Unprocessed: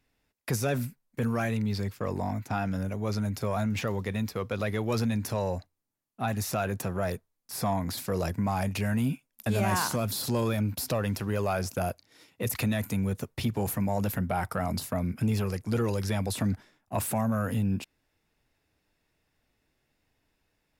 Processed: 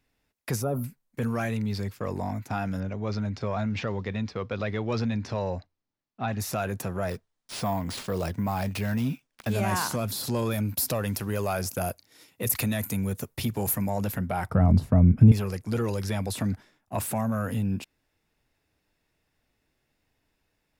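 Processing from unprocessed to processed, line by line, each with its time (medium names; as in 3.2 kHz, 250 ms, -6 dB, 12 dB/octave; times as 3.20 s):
0.62–0.84 s: time-frequency box 1.4–9.9 kHz -22 dB
2.80–6.40 s: low-pass 5.4 kHz 24 dB/octave
7.09–9.53 s: careless resampling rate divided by 3×, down none, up hold
10.51–13.90 s: treble shelf 8.2 kHz +11 dB
14.50–15.32 s: tilt EQ -4.5 dB/octave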